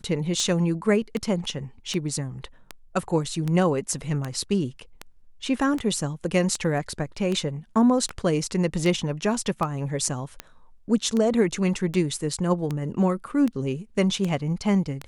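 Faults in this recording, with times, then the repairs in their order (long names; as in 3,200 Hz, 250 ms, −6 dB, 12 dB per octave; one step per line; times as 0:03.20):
scratch tick 78 rpm −15 dBFS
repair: click removal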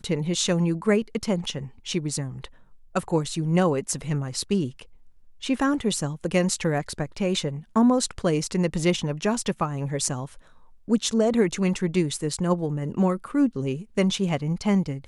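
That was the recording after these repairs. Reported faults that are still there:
none of them is left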